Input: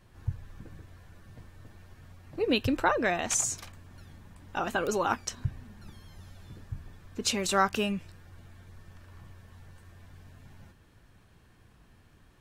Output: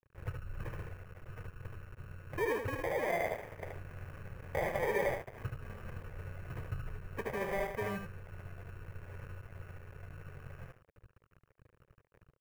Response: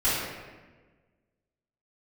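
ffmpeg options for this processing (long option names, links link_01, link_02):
-filter_complex "[0:a]acompressor=threshold=-35dB:ratio=12,asettb=1/sr,asplit=3[link_01][link_02][link_03];[link_01]atrim=end=1.214[link_04];[link_02]atrim=start=1.21:end=3.08,asetpts=PTS-STARTPTS,afade=type=in:duration=0.004:curve=qsin,afade=type=out:start_time=1.866:duration=0.004:curve=qsin,equalizer=frequency=4700:width=0.34:gain=-15[link_05];[link_03]atrim=start=3.076[link_06];[link_04][link_05]acrossfade=duration=0.004:curve1=hsin:curve2=qsin[link_07];[link_07][link_06]acrossfade=duration=0.004:curve1=qsin:curve2=hsin,asoftclip=type=tanh:threshold=-37dB,afftfilt=real='re*gte(hypot(re,im),0.00316)':imag='im*gte(hypot(re,im),0.00316)':win_size=1024:overlap=0.75,acrossover=split=710[link_08][link_09];[link_09]adynamicsmooth=sensitivity=6.5:basefreq=3600[link_10];[link_08][link_10]amix=inputs=2:normalize=0,acrusher=samples=32:mix=1:aa=0.000001,aecho=1:1:75|150|225:0.631|0.114|0.0204,aeval=exprs='sgn(val(0))*max(abs(val(0))-0.00178,0)':channel_layout=same,equalizer=frequency=125:width_type=o:width=1:gain=5,equalizer=frequency=250:width_type=o:width=1:gain=-12,equalizer=frequency=500:width_type=o:width=1:gain=11,equalizer=frequency=2000:width_type=o:width=1:gain=11,equalizer=frequency=4000:width_type=o:width=1:gain=-11,equalizer=frequency=8000:width_type=o:width=1:gain=-5,volume=5.5dB"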